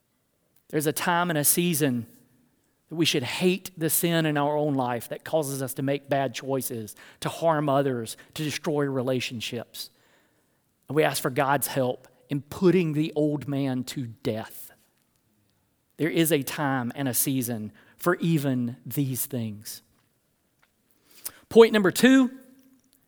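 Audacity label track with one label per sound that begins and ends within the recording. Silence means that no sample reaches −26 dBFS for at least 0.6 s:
0.730000	2.000000	sound
2.980000	9.820000	sound
10.900000	14.420000	sound
16.000000	19.730000	sound
21.260000	22.270000	sound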